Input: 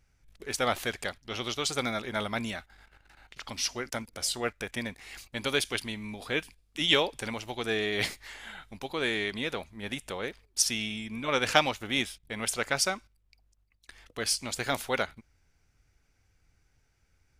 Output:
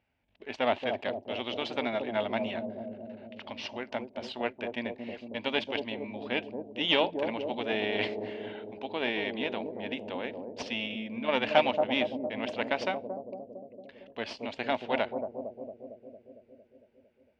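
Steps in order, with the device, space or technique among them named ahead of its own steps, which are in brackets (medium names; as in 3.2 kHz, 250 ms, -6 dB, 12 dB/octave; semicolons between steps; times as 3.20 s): analogue delay pedal into a guitar amplifier (bucket-brigade echo 227 ms, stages 1024, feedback 70%, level -3.5 dB; valve stage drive 16 dB, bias 0.75; cabinet simulation 110–3600 Hz, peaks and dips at 140 Hz -10 dB, 250 Hz +6 dB, 630 Hz +9 dB, 900 Hz +6 dB, 1.3 kHz -6 dB, 2.8 kHz +6 dB)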